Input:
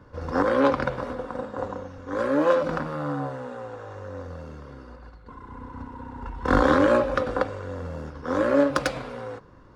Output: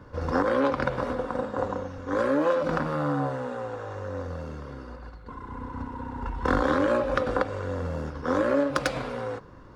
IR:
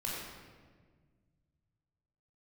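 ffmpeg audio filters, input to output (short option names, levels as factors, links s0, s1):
-af "acompressor=threshold=0.0631:ratio=4,volume=1.41"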